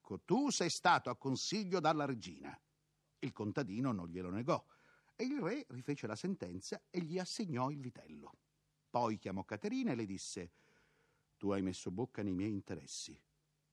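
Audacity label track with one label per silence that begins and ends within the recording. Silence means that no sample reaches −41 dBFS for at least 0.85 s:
7.890000	8.940000	silence
10.440000	11.430000	silence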